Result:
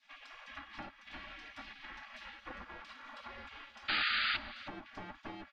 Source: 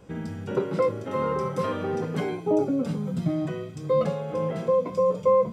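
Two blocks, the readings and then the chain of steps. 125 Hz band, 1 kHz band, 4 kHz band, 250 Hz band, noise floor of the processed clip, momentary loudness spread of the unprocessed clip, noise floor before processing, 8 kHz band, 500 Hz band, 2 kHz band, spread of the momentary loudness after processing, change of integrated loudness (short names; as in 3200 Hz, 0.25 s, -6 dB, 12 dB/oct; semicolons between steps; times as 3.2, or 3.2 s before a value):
-29.0 dB, -14.0 dB, +8.0 dB, -25.5 dB, -61 dBFS, 7 LU, -39 dBFS, n/a, -33.5 dB, +4.5 dB, 18 LU, -13.0 dB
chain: minimum comb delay 2.1 ms; low shelf 88 Hz -7 dB; spectral gate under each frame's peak -25 dB weak; comb 3.6 ms, depth 54%; compressor 6:1, threshold -50 dBFS, peak gain reduction 15 dB; painted sound noise, 3.88–4.37, 1200–4900 Hz -35 dBFS; air absorption 270 m; on a send: echo 0.313 s -18.5 dB; on the sum: gain +7 dB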